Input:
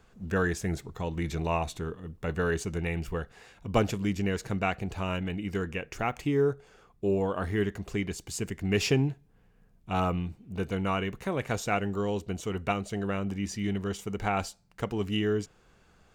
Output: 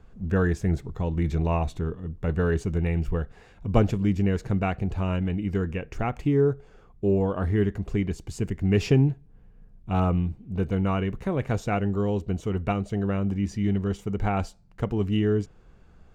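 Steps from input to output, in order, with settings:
spectral tilt −2.5 dB per octave

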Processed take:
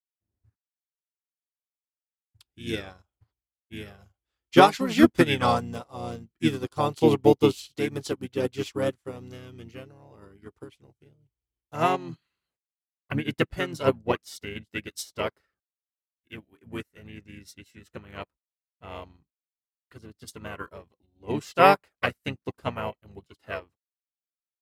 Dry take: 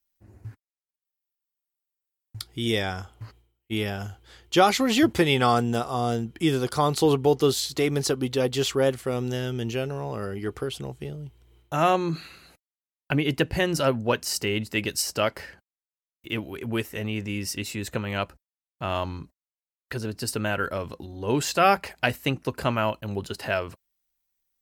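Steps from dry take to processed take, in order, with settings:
pitch-shifted copies added −5 semitones −4 dB
expander for the loud parts 2.5 to 1, over −40 dBFS
level +4 dB

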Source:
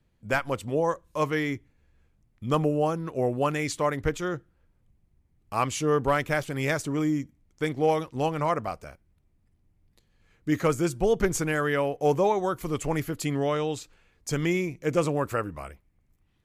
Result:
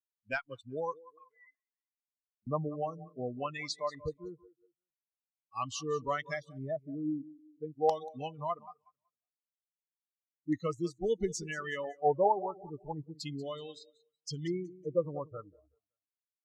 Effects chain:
spectral dynamics exaggerated over time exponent 2
0:01.03–0:02.47: envelope filter 260–2,000 Hz, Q 9.7, up, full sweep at −37.5 dBFS
low-shelf EQ 69 Hz −11.5 dB
auto-filter low-pass square 0.38 Hz 800–5,000 Hz
repeating echo 187 ms, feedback 39%, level −17 dB
noise reduction from a noise print of the clip's start 24 dB
level −5 dB

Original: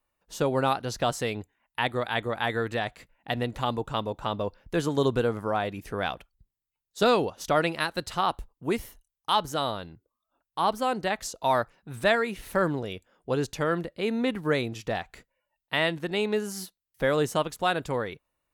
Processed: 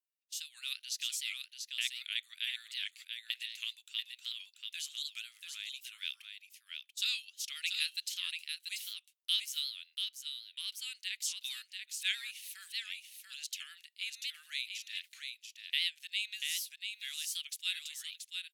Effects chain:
noise gate −49 dBFS, range −13 dB
Butterworth high-pass 2,500 Hz 36 dB per octave
on a send: single-tap delay 687 ms −5.5 dB
on the sum: wow of a warped record 78 rpm, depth 160 cents

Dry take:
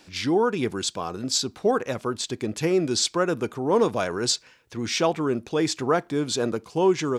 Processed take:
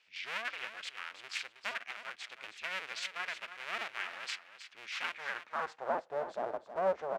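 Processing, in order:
sub-harmonics by changed cycles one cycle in 2, inverted
dynamic equaliser 1,500 Hz, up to +7 dB, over −39 dBFS, Q 1.6
band-pass filter sweep 2,500 Hz → 630 Hz, 0:05.13–0:05.92
repeating echo 318 ms, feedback 16%, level −11.5 dB
level −8 dB

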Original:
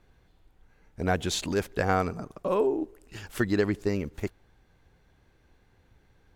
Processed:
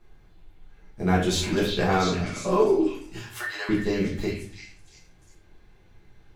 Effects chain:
0:03.20–0:03.69: high-pass filter 760 Hz 24 dB per octave
echo through a band-pass that steps 347 ms, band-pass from 2,900 Hz, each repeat 0.7 octaves, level −1 dB
convolution reverb RT60 0.50 s, pre-delay 5 ms, DRR −5.5 dB
level −3 dB

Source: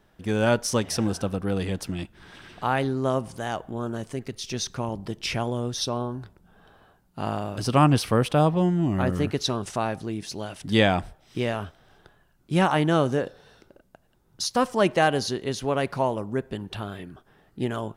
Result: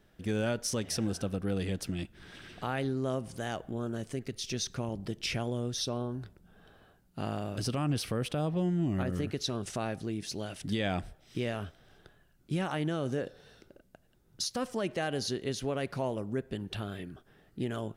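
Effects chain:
parametric band 960 Hz −7.5 dB 0.77 octaves
in parallel at +1 dB: downward compressor, threshold −31 dBFS, peak gain reduction 16 dB
on the sum: brickwall limiter −13.5 dBFS, peak gain reduction 7.5 dB
level −8.5 dB

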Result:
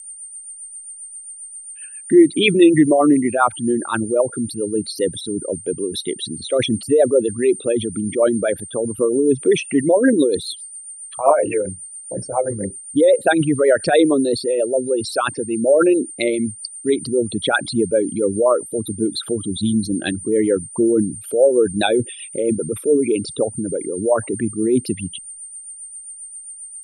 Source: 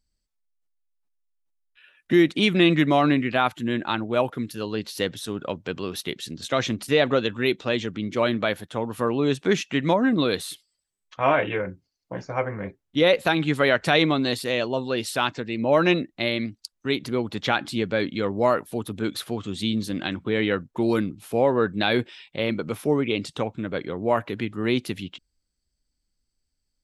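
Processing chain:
spectral envelope exaggerated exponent 3
steady tone 8,900 Hz −38 dBFS
rotating-speaker cabinet horn 7.5 Hz
level +8 dB

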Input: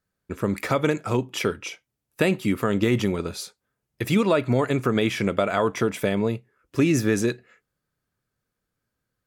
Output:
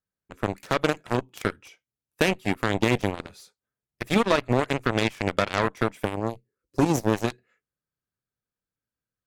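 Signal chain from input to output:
gain on a spectral selection 0:06.04–0:07.14, 580–3,900 Hz −11 dB
harmonic generator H 7 −15 dB, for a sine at −7 dBFS

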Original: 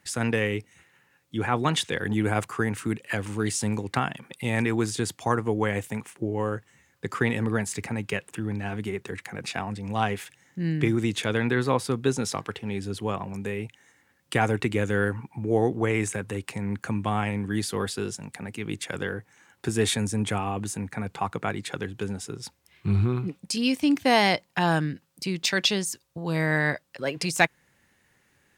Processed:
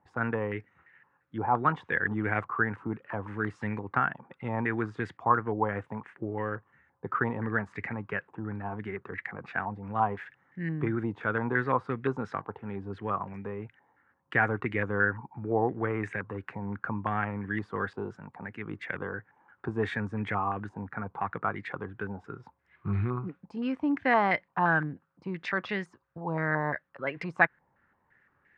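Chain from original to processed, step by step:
low-pass on a step sequencer 5.8 Hz 900–1,900 Hz
level −6.5 dB

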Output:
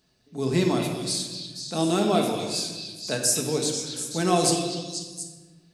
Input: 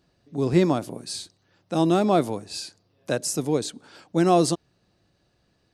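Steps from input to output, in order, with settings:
high-shelf EQ 2,700 Hz +11.5 dB
echo through a band-pass that steps 243 ms, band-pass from 3,200 Hz, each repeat 0.7 octaves, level −3.5 dB
rectangular room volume 1,200 cubic metres, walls mixed, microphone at 1.5 metres
level −5.5 dB

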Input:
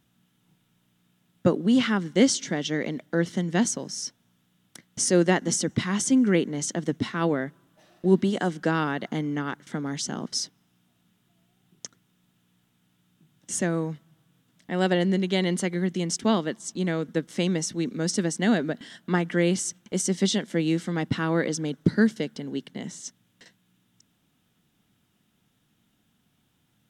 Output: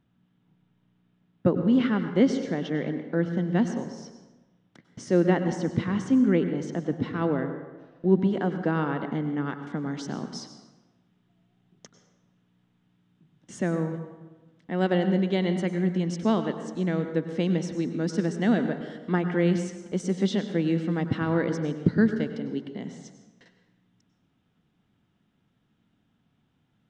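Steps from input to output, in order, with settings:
head-to-tape spacing loss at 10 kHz 31 dB, from 0:09.44 at 10 kHz 22 dB
convolution reverb RT60 1.2 s, pre-delay 88 ms, DRR 8 dB

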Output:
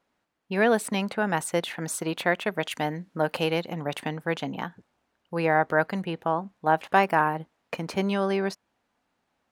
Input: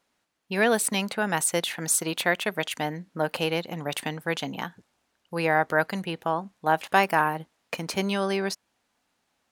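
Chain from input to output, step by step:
high-shelf EQ 3,100 Hz −12 dB, from 0:02.65 −5.5 dB, from 0:03.73 −12 dB
level +1.5 dB

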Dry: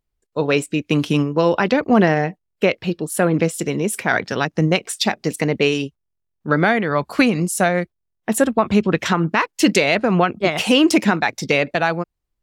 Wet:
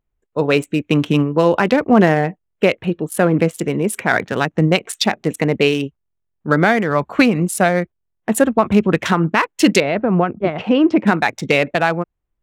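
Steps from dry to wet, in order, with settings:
adaptive Wiener filter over 9 samples
0:09.80–0:11.07: head-to-tape spacing loss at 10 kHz 41 dB
level +2.5 dB

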